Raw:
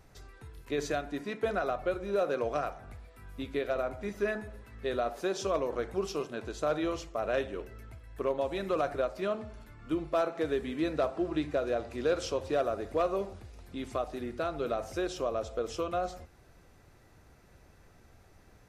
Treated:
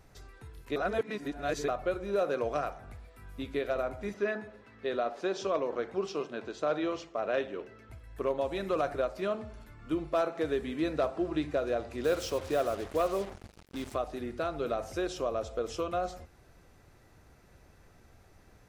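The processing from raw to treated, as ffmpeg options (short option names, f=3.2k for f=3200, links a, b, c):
-filter_complex "[0:a]asettb=1/sr,asplit=3[a][b][c];[a]atrim=end=4.144[d];[b]atrim=start=4.14:end=7.9,asetpts=PTS-STARTPTS,afade=t=in:d=0.004:c=qsin,afade=t=out:st=3.756:d=0.004:c=qsin,highpass=160,lowpass=5.2k[e];[c]atrim=start=7.896[f];[d][e]acrossfade=d=0.004:c1=hsin:c2=qsin[g];[g][f]acrossfade=d=0.004:c1=qsin:c2=hsin,asettb=1/sr,asplit=3[h][i][j];[h]atrim=end=12.044[k];[i]atrim=start=12.04:end=13.95,asetpts=PTS-STARTPTS,afade=t=in:d=0.004:c=qsin,afade=t=out:st=1.906:d=0.004:c=qsin,acrusher=bits=6:mix=0:aa=0.5[l];[j]atrim=start=13.946[m];[k][l]acrossfade=d=0.004:c1=hsin:c2=qsin[n];[n][m]acrossfade=d=0.004:c1=qsin:c2=hsin,asplit=3[o][p][q];[o]atrim=end=0.762[r];[p]atrim=start=0.758:end=1.682,asetpts=PTS-STARTPTS,areverse[s];[q]atrim=start=1.678[t];[r][s]acrossfade=d=0.004:c1=hsin:c2=hsin[u];[u][t]acrossfade=d=0.004:c1=hsin:c2=hsin"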